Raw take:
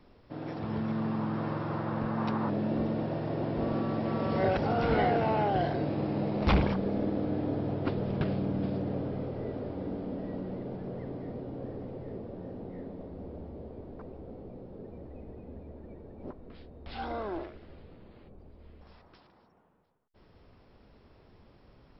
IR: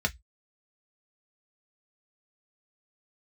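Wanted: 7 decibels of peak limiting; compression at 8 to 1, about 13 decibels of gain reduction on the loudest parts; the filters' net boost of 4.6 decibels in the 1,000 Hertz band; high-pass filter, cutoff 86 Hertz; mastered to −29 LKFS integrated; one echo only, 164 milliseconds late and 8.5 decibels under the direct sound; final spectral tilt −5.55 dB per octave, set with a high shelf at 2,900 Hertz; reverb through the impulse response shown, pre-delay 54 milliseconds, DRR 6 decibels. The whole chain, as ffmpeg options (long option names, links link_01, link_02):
-filter_complex "[0:a]highpass=86,equalizer=frequency=1000:width_type=o:gain=5.5,highshelf=frequency=2900:gain=8,acompressor=threshold=-33dB:ratio=8,alimiter=level_in=5dB:limit=-24dB:level=0:latency=1,volume=-5dB,aecho=1:1:164:0.376,asplit=2[link_01][link_02];[1:a]atrim=start_sample=2205,adelay=54[link_03];[link_02][link_03]afir=irnorm=-1:irlink=0,volume=-14.5dB[link_04];[link_01][link_04]amix=inputs=2:normalize=0,volume=9dB"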